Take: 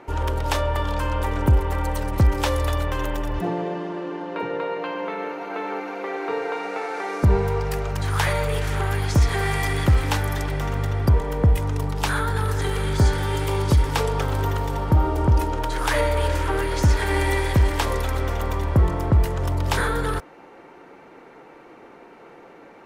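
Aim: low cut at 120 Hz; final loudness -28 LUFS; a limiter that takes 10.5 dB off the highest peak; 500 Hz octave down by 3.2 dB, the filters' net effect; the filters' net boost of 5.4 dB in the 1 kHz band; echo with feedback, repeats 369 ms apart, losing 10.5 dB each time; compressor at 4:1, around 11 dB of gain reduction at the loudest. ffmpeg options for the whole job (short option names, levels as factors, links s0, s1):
-af "highpass=120,equalizer=f=500:t=o:g=-6,equalizer=f=1000:t=o:g=8,acompressor=threshold=0.0316:ratio=4,alimiter=level_in=1.19:limit=0.0631:level=0:latency=1,volume=0.841,aecho=1:1:369|738|1107:0.299|0.0896|0.0269,volume=2"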